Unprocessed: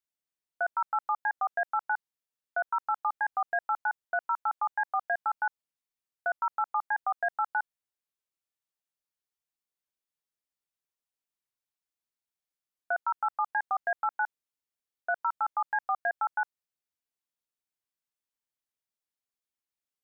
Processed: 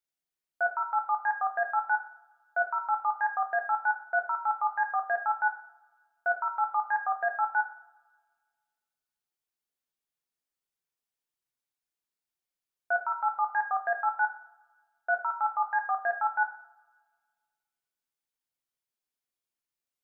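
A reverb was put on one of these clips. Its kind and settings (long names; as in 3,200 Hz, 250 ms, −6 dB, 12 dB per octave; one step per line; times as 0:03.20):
coupled-rooms reverb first 0.47 s, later 1.7 s, from −21 dB, DRR 3 dB
level −1.5 dB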